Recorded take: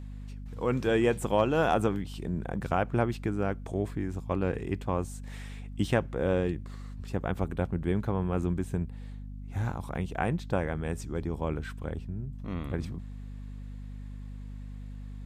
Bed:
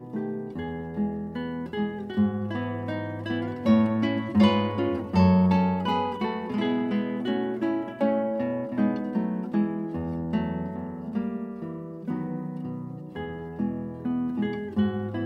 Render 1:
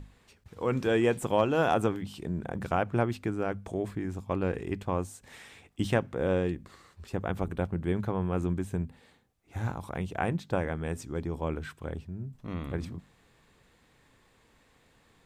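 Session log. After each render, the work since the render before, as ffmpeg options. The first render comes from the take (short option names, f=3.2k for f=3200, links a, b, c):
-af "bandreject=f=50:t=h:w=6,bandreject=f=100:t=h:w=6,bandreject=f=150:t=h:w=6,bandreject=f=200:t=h:w=6,bandreject=f=250:t=h:w=6"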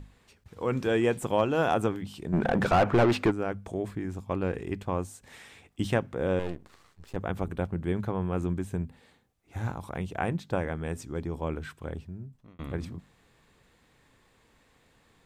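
-filter_complex "[0:a]asplit=3[a][b][c];[a]afade=t=out:st=2.32:d=0.02[d];[b]asplit=2[e][f];[f]highpass=f=720:p=1,volume=29dB,asoftclip=type=tanh:threshold=-12.5dB[g];[e][g]amix=inputs=2:normalize=0,lowpass=f=1.5k:p=1,volume=-6dB,afade=t=in:st=2.32:d=0.02,afade=t=out:st=3.3:d=0.02[h];[c]afade=t=in:st=3.3:d=0.02[i];[d][h][i]amix=inputs=3:normalize=0,asettb=1/sr,asplit=3[j][k][l];[j]atrim=end=6.394[m];[k]atrim=start=6.39:end=7.16,asetpts=PTS-STARTPTS,afade=t=in:d=0.004:c=qsin,afade=t=out:st=0.766:d=0.004:c=qsin,aeval=exprs='max(val(0),0)':c=same[n];[l]atrim=start=7.156[o];[m][n]acrossfade=d=0.004:c1=hsin:c2=qsin[p];[p][o]acrossfade=d=0.004:c1=qsin:c2=hsin,asplit=2[q][r];[q]atrim=end=12.59,asetpts=PTS-STARTPTS,afade=t=out:st=12.05:d=0.54[s];[r]atrim=start=12.59,asetpts=PTS-STARTPTS,afade=t=in:d=0.004:c=hsin[t];[s][t]concat=n=2:v=0:a=1"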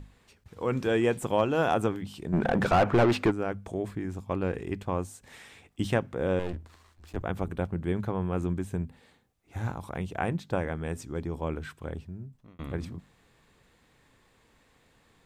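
-filter_complex "[0:a]asplit=3[a][b][c];[a]afade=t=out:st=6.52:d=0.02[d];[b]afreqshift=-81,afade=t=in:st=6.52:d=0.02,afade=t=out:st=7.22:d=0.02[e];[c]afade=t=in:st=7.22:d=0.02[f];[d][e][f]amix=inputs=3:normalize=0"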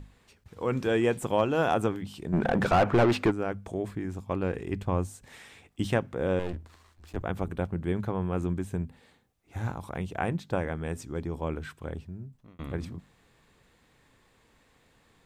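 -filter_complex "[0:a]asettb=1/sr,asplit=3[a][b][c];[a]atrim=end=4.734[d];[b]atrim=start=4.73:end=5.25,asetpts=PTS-STARTPTS,afade=t=in:d=0.004:c=qsin,afade=t=out:st=0.516:d=0.004:c=qsin,lowshelf=f=150:g=8[e];[c]atrim=start=5.246[f];[d][e]acrossfade=d=0.004:c1=hsin:c2=qsin[g];[g][f]acrossfade=d=0.004:c1=qsin:c2=hsin"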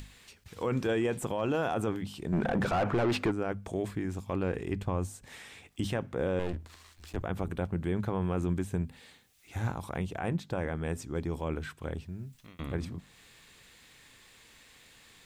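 -filter_complex "[0:a]acrossover=split=1900[a][b];[b]acompressor=mode=upward:threshold=-46dB:ratio=2.5[c];[a][c]amix=inputs=2:normalize=0,alimiter=limit=-21.5dB:level=0:latency=1:release=22"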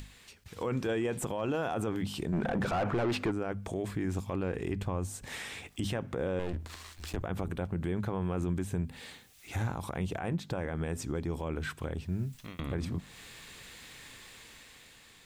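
-af "dynaudnorm=f=300:g=7:m=7.5dB,alimiter=limit=-24dB:level=0:latency=1:release=200"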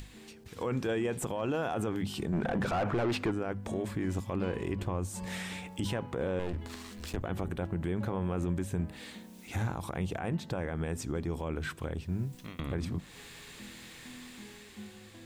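-filter_complex "[1:a]volume=-22.5dB[a];[0:a][a]amix=inputs=2:normalize=0"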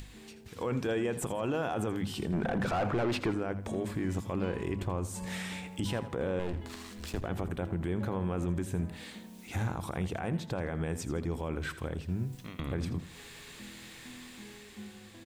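-af "aecho=1:1:82|164|246:0.2|0.0658|0.0217"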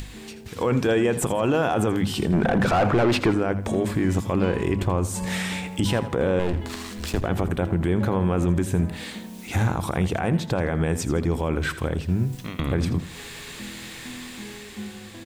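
-af "volume=10.5dB"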